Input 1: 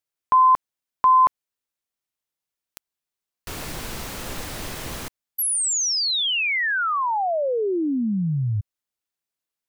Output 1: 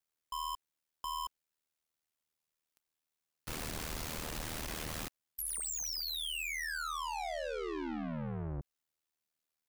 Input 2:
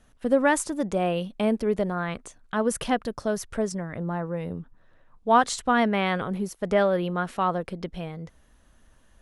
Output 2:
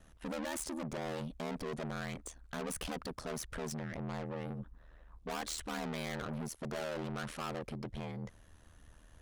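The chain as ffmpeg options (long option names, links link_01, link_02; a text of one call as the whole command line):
ffmpeg -i in.wav -af "aeval=exprs='(tanh(70.8*val(0)+0.15)-tanh(0.15))/70.8':channel_layout=same,aeval=exprs='val(0)*sin(2*PI*39*n/s)':channel_layout=same,volume=2dB" out.wav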